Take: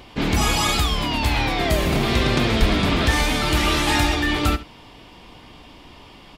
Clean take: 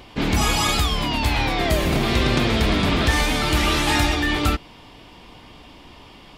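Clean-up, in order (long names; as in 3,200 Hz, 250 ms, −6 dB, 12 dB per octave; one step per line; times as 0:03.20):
0:02.59–0:02.71: high-pass filter 140 Hz 24 dB per octave
echo removal 71 ms −15.5 dB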